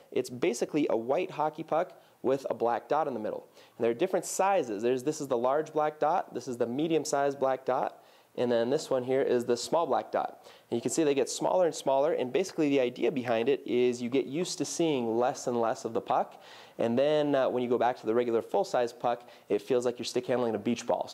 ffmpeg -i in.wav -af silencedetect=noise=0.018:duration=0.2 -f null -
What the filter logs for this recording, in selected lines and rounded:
silence_start: 1.84
silence_end: 2.24 | silence_duration: 0.40
silence_start: 3.39
silence_end: 3.80 | silence_duration: 0.41
silence_start: 7.88
silence_end: 8.38 | silence_duration: 0.50
silence_start: 10.29
silence_end: 10.72 | silence_duration: 0.43
silence_start: 16.24
silence_end: 16.79 | silence_duration: 0.55
silence_start: 19.15
silence_end: 19.50 | silence_duration: 0.35